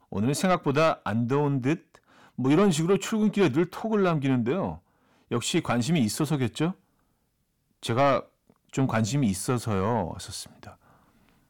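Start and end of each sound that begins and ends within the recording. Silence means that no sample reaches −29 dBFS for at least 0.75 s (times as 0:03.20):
0:07.83–0:10.63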